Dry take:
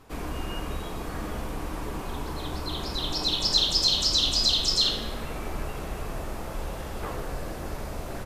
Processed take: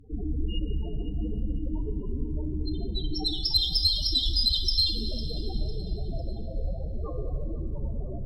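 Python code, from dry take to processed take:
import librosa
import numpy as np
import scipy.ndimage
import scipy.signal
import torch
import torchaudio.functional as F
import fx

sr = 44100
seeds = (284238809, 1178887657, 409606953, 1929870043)

p1 = fx.sample_hold(x, sr, seeds[0], rate_hz=2100.0, jitter_pct=0)
p2 = x + (p1 * 10.0 ** (-8.0 / 20.0))
p3 = fx.spec_topn(p2, sr, count=8)
p4 = fx.cheby_harmonics(p3, sr, harmonics=(2, 5, 6, 7), levels_db=(-22, -20, -39, -32), full_scale_db=-10.0)
p5 = fx.quant_float(p4, sr, bits=8)
p6 = fx.echo_feedback(p5, sr, ms=502, feedback_pct=40, wet_db=-18)
y = fx.rev_schroeder(p6, sr, rt60_s=2.7, comb_ms=26, drr_db=9.0)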